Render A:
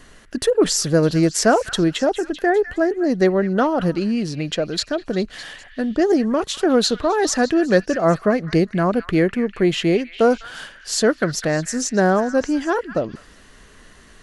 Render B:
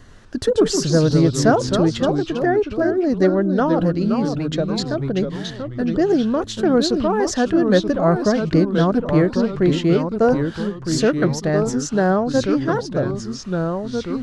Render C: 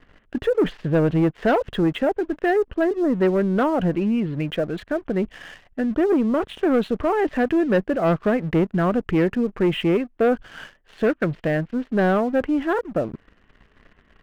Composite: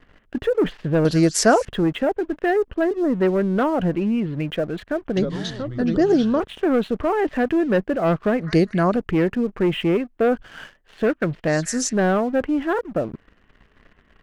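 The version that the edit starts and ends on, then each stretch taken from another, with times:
C
0:01.05–0:01.65: punch in from A
0:05.17–0:06.40: punch in from B
0:08.41–0:08.96: punch in from A
0:11.47–0:11.93: punch in from A

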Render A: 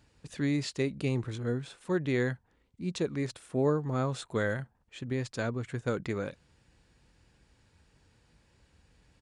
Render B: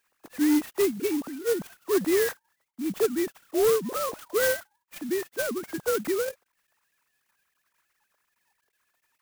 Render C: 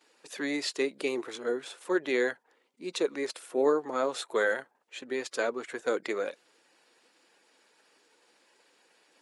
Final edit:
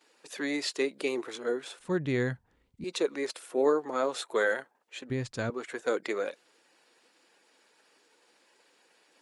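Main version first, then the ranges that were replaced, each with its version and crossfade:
C
0:01.79–0:02.84: punch in from A
0:05.10–0:05.50: punch in from A
not used: B

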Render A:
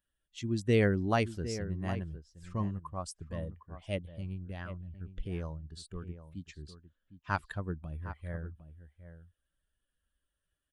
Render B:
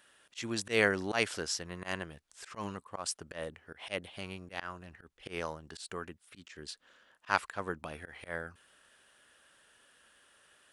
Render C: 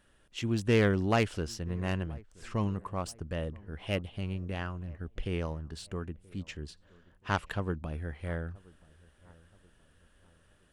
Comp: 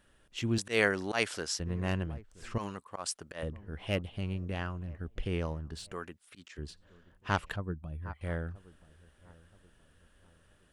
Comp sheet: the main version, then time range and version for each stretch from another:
C
0:00.58–0:01.60: punch in from B
0:02.58–0:03.43: punch in from B
0:05.92–0:06.58: punch in from B
0:07.56–0:08.21: punch in from A

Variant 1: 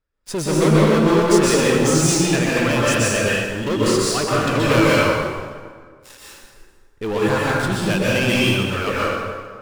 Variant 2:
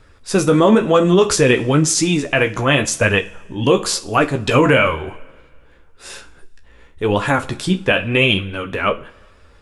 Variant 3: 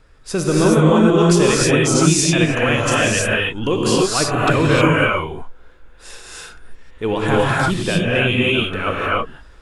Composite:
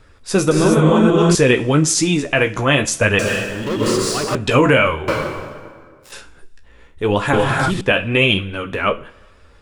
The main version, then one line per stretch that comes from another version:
2
0:00.51–0:01.35: punch in from 3
0:03.19–0:04.35: punch in from 1
0:05.08–0:06.12: punch in from 1
0:07.33–0:07.81: punch in from 3

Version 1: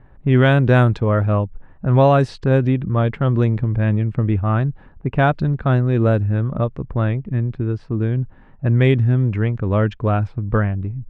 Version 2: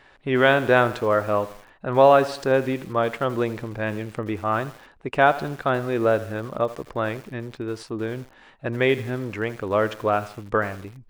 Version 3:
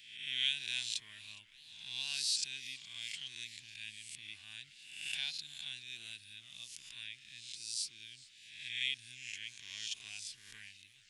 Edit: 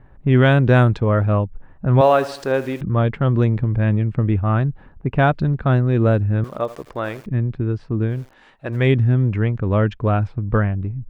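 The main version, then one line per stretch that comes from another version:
1
0:02.01–0:02.81: punch in from 2
0:06.44–0:07.26: punch in from 2
0:08.16–0:08.80: punch in from 2, crossfade 0.24 s
not used: 3

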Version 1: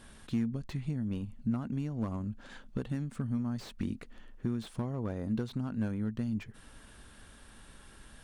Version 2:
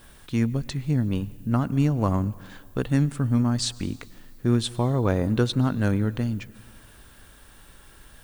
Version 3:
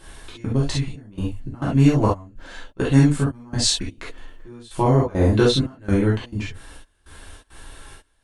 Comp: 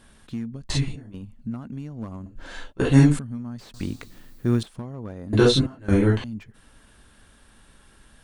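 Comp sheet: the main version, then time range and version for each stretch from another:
1
0:00.70–0:01.14: punch in from 3
0:02.26–0:03.19: punch in from 3
0:03.74–0:04.63: punch in from 2
0:05.33–0:06.24: punch in from 3

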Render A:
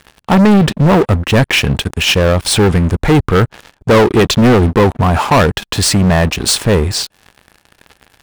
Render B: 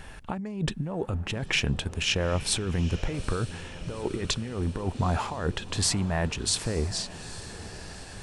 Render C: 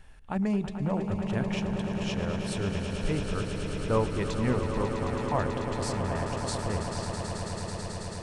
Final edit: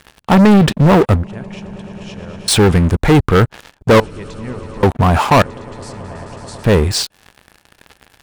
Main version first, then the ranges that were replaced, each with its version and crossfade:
A
0:01.24–0:02.48: punch in from C
0:04.00–0:04.83: punch in from C
0:05.42–0:06.64: punch in from C
not used: B

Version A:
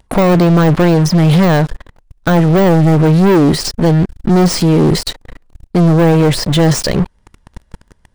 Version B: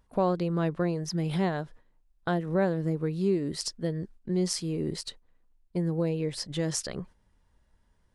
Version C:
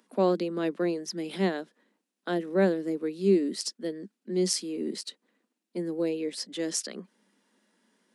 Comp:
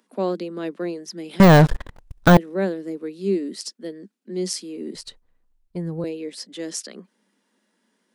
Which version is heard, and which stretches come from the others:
C
0:01.40–0:02.37: punch in from A
0:04.95–0:06.04: punch in from B

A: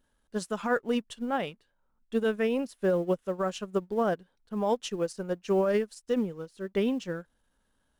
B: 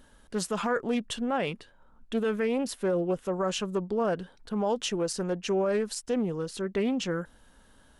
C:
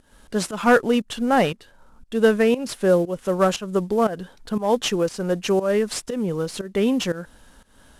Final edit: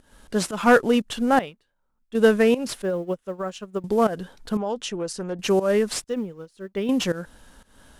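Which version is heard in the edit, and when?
C
0:01.39–0:02.15: punch in from A
0:02.82–0:03.84: punch in from A
0:04.57–0:05.39: punch in from B
0:06.04–0:06.89: punch in from A

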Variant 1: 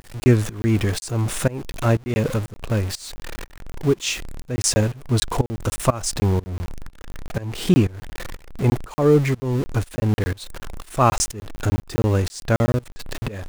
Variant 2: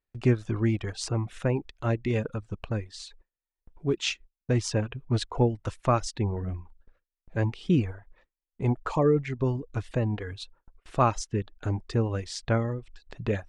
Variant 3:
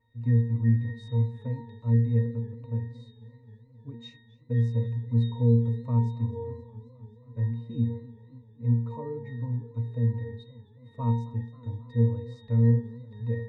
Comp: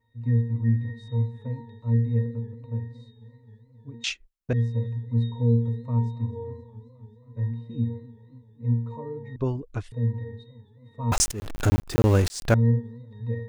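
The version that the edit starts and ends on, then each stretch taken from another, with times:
3
0:04.04–0:04.53: punch in from 2
0:09.36–0:09.92: punch in from 2
0:11.12–0:12.54: punch in from 1

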